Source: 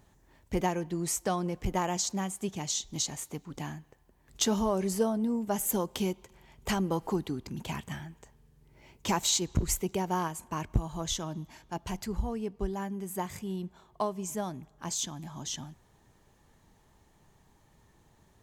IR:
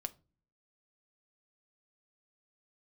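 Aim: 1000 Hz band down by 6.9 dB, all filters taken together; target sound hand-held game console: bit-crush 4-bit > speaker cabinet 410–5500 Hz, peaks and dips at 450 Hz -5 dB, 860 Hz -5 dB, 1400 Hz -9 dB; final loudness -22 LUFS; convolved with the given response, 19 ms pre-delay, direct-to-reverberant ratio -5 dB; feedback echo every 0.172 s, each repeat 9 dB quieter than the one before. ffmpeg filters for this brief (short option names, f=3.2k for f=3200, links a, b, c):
-filter_complex "[0:a]equalizer=f=1k:t=o:g=-3.5,aecho=1:1:172|344|516|688:0.355|0.124|0.0435|0.0152,asplit=2[a][b];[1:a]atrim=start_sample=2205,adelay=19[c];[b][c]afir=irnorm=-1:irlink=0,volume=6.5dB[d];[a][d]amix=inputs=2:normalize=0,acrusher=bits=3:mix=0:aa=0.000001,highpass=410,equalizer=f=450:t=q:w=4:g=-5,equalizer=f=860:t=q:w=4:g=-5,equalizer=f=1.4k:t=q:w=4:g=-9,lowpass=f=5.5k:w=0.5412,lowpass=f=5.5k:w=1.3066,volume=8.5dB"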